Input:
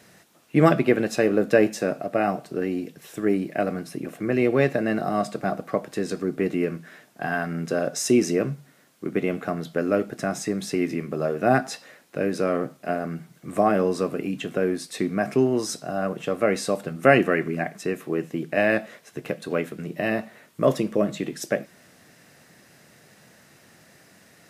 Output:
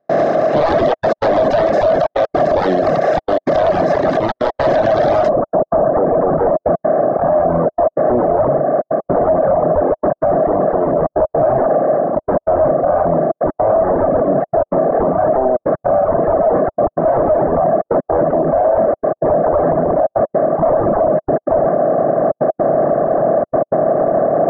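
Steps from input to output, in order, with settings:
compressor on every frequency bin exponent 0.2
transient designer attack 0 dB, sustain +7 dB
wave folding −9.5 dBFS
notch filter 1,400 Hz, Q 11
gate pattern ".xxxxxxxxx.x" 160 BPM −60 dB
low-pass filter 3,900 Hz 24 dB per octave, from 0:05.29 1,300 Hz
parametric band 630 Hz +15 dB 0.42 octaves
reverb reduction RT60 1.9 s
parametric band 2,600 Hz −14.5 dB 0.66 octaves
boost into a limiter +7.5 dB
level −5 dB

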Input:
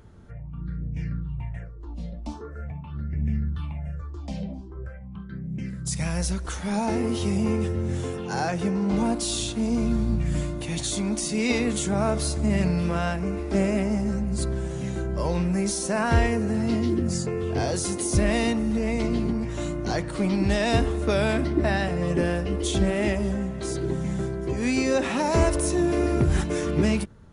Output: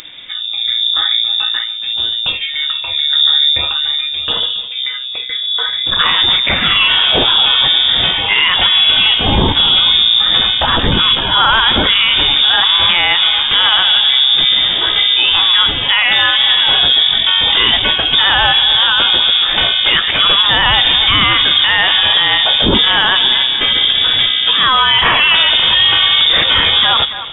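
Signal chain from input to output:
tilt shelving filter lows −8 dB, about 1,100 Hz
on a send: delay that swaps between a low-pass and a high-pass 139 ms, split 860 Hz, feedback 61%, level −14 dB
on the sum: voice inversion scrambler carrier 3,600 Hz
boost into a limiter +22.5 dB
level −1 dB

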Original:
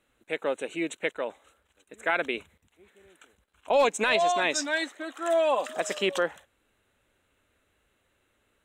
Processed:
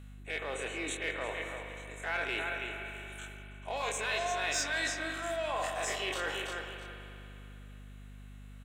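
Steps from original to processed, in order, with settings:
every bin's largest magnitude spread in time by 60 ms
repeating echo 329 ms, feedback 21%, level −16 dB
in parallel at −7 dB: gain into a clipping stage and back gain 24 dB
on the sum: comb filter 2.7 ms, depth 31%
reversed playback
downward compressor 5 to 1, threshold −32 dBFS, peak gain reduction 16 dB
reversed playback
high-pass filter 930 Hz 6 dB per octave
spring reverb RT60 3 s, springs 59 ms, chirp 60 ms, DRR 4.5 dB
mains hum 50 Hz, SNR 11 dB
level +1 dB

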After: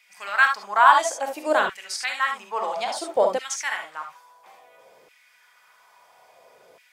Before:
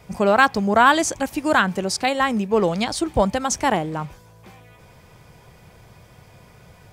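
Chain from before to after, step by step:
reverb whose tail is shaped and stops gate 90 ms rising, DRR 3.5 dB
auto-filter high-pass saw down 0.59 Hz 420–2,300 Hz
level −7 dB

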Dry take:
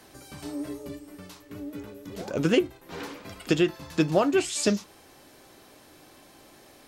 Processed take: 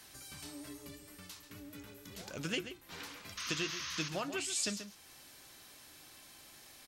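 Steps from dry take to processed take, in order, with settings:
guitar amp tone stack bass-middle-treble 5-5-5
sound drawn into the spectrogram noise, 0:03.37–0:04.09, 970–6,700 Hz −44 dBFS
slap from a distant wall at 23 metres, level −11 dB
in parallel at +2.5 dB: downward compressor, threshold −55 dBFS, peak gain reduction 20.5 dB

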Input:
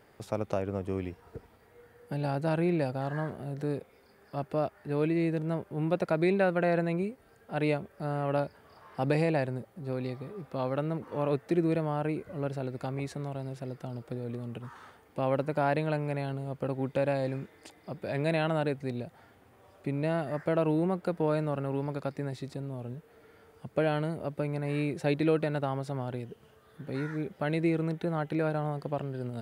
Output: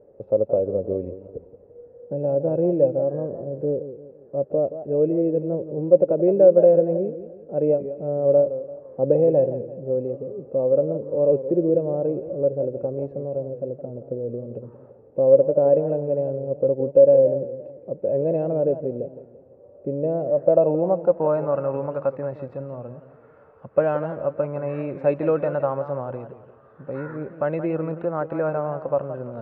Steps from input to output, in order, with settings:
hollow resonant body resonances 550/2,600 Hz, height 14 dB, ringing for 45 ms
low-pass filter sweep 470 Hz → 1,200 Hz, 0:20.03–0:21.55
feedback echo with a swinging delay time 170 ms, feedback 42%, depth 145 cents, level −12.5 dB

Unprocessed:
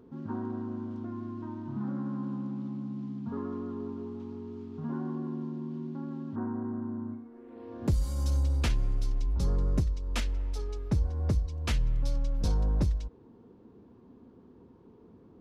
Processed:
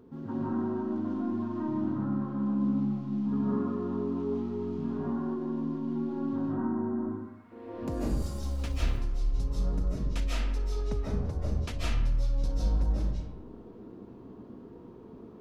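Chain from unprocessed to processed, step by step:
0:01.86–0:02.46: high-shelf EQ 5,100 Hz −9 dB
0:06.93–0:07.52: high-pass filter 1,400 Hz 12 dB per octave
downward compressor 6 to 1, threshold −35 dBFS, peak gain reduction 12 dB
0:08.08–0:08.84: surface crackle 93 per second −44 dBFS
comb and all-pass reverb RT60 1 s, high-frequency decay 0.55×, pre-delay 110 ms, DRR −7.5 dB

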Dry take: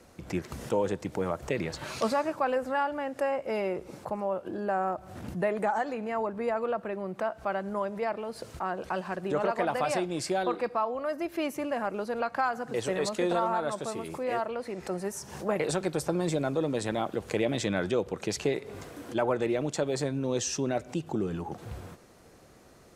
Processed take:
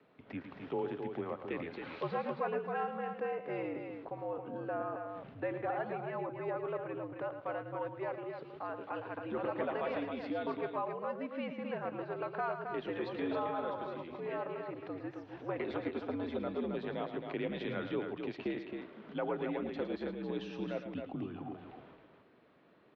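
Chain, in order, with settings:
single-sideband voice off tune −74 Hz 230–3,600 Hz
loudspeakers that aren't time-aligned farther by 38 metres −10 dB, 92 metres −6 dB
level −8.5 dB

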